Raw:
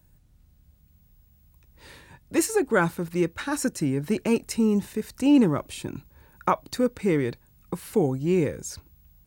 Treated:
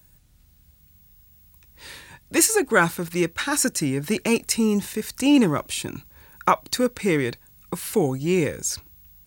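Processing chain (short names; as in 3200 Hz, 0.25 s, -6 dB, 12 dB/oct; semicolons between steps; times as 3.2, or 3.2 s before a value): tilt shelf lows -5 dB, about 1300 Hz; gain +5.5 dB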